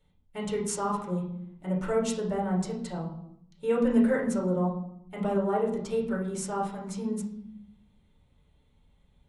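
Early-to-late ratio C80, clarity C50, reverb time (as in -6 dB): 10.0 dB, 6.0 dB, 0.75 s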